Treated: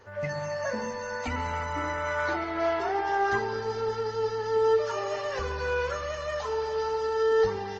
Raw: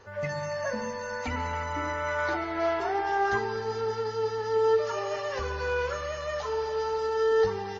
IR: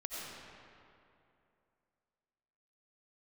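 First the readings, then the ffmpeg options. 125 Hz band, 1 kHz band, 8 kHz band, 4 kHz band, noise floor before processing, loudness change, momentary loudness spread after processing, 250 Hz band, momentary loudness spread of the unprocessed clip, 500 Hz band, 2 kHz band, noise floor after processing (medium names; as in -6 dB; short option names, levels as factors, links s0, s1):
0.0 dB, +0.5 dB, no reading, +0.5 dB, -36 dBFS, +0.5 dB, 8 LU, +0.5 dB, 8 LU, +0.5 dB, 0.0 dB, -35 dBFS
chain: -filter_complex "[0:a]asplit=2[s0][s1];[1:a]atrim=start_sample=2205,afade=t=out:st=0.16:d=0.01,atrim=end_sample=7497[s2];[s1][s2]afir=irnorm=-1:irlink=0,volume=0.0668[s3];[s0][s3]amix=inputs=2:normalize=0" -ar 48000 -c:a libopus -b:a 20k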